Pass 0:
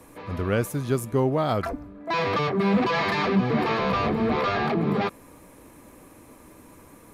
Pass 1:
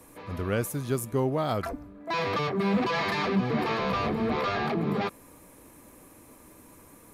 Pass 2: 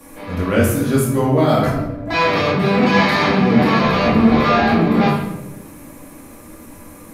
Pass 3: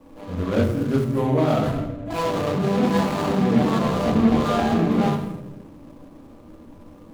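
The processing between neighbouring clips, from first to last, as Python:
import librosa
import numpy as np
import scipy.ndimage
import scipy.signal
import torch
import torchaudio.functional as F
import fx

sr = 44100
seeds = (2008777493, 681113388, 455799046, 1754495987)

y1 = fx.high_shelf(x, sr, hz=6500.0, db=7.0)
y1 = F.gain(torch.from_numpy(y1), -4.0).numpy()
y2 = fx.room_shoebox(y1, sr, seeds[0], volume_m3=300.0, walls='mixed', distance_m=2.3)
y2 = F.gain(torch.from_numpy(y2), 5.5).numpy()
y3 = scipy.ndimage.median_filter(y2, 25, mode='constant')
y3 = F.gain(torch.from_numpy(y3), -4.5).numpy()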